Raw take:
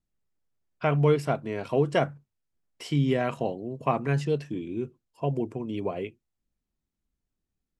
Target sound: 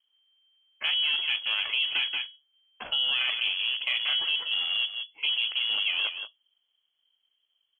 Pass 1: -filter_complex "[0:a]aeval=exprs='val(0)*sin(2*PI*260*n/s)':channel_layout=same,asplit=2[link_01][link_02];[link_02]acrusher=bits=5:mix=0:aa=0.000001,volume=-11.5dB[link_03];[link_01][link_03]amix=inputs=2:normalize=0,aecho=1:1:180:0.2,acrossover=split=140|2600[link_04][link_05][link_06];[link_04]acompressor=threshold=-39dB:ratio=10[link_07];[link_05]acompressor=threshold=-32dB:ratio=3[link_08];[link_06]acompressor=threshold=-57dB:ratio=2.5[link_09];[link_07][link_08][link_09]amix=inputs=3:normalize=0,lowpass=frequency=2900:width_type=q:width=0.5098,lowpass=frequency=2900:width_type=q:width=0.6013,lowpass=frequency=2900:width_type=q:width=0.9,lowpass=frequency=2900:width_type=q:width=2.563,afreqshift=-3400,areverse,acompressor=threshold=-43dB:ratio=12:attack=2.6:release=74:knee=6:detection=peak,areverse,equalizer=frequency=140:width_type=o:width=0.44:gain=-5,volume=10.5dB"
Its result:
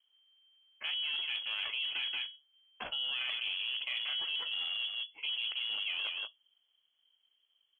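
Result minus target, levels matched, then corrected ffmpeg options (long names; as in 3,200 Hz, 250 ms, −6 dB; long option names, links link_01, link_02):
downward compressor: peak gain reduction +9.5 dB
-filter_complex "[0:a]aeval=exprs='val(0)*sin(2*PI*260*n/s)':channel_layout=same,asplit=2[link_01][link_02];[link_02]acrusher=bits=5:mix=0:aa=0.000001,volume=-11.5dB[link_03];[link_01][link_03]amix=inputs=2:normalize=0,aecho=1:1:180:0.2,acrossover=split=140|2600[link_04][link_05][link_06];[link_04]acompressor=threshold=-39dB:ratio=10[link_07];[link_05]acompressor=threshold=-32dB:ratio=3[link_08];[link_06]acompressor=threshold=-57dB:ratio=2.5[link_09];[link_07][link_08][link_09]amix=inputs=3:normalize=0,lowpass=frequency=2900:width_type=q:width=0.5098,lowpass=frequency=2900:width_type=q:width=0.6013,lowpass=frequency=2900:width_type=q:width=0.9,lowpass=frequency=2900:width_type=q:width=2.563,afreqshift=-3400,areverse,acompressor=threshold=-32.5dB:ratio=12:attack=2.6:release=74:knee=6:detection=peak,areverse,equalizer=frequency=140:width_type=o:width=0.44:gain=-5,volume=10.5dB"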